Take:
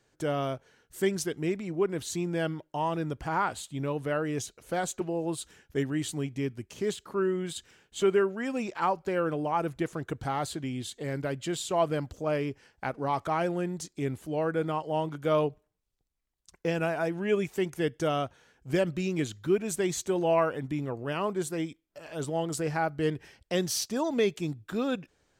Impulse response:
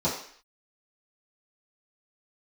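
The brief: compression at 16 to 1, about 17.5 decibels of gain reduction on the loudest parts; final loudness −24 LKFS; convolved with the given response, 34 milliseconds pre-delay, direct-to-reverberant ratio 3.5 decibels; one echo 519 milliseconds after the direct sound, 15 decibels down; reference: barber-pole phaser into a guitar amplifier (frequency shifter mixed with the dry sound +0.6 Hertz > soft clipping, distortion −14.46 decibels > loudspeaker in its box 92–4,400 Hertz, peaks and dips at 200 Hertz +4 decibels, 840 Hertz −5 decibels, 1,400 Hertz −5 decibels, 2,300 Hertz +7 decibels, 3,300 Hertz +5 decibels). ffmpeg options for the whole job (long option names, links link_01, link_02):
-filter_complex "[0:a]acompressor=threshold=-38dB:ratio=16,aecho=1:1:519:0.178,asplit=2[link_01][link_02];[1:a]atrim=start_sample=2205,adelay=34[link_03];[link_02][link_03]afir=irnorm=-1:irlink=0,volume=-15dB[link_04];[link_01][link_04]amix=inputs=2:normalize=0,asplit=2[link_05][link_06];[link_06]afreqshift=0.6[link_07];[link_05][link_07]amix=inputs=2:normalize=1,asoftclip=threshold=-37dB,highpass=92,equalizer=frequency=200:width_type=q:width=4:gain=4,equalizer=frequency=840:width_type=q:width=4:gain=-5,equalizer=frequency=1400:width_type=q:width=4:gain=-5,equalizer=frequency=2300:width_type=q:width=4:gain=7,equalizer=frequency=3300:width_type=q:width=4:gain=5,lowpass=frequency=4400:width=0.5412,lowpass=frequency=4400:width=1.3066,volume=20.5dB"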